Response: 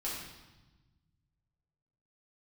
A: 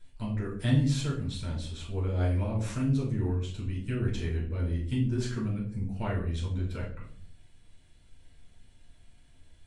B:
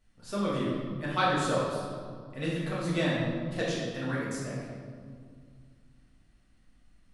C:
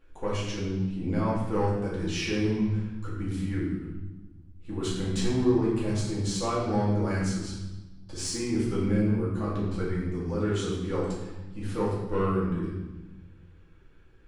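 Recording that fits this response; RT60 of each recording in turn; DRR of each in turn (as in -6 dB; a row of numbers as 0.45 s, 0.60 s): C; 0.50 s, 2.1 s, 1.1 s; -4.5 dB, -7.5 dB, -7.5 dB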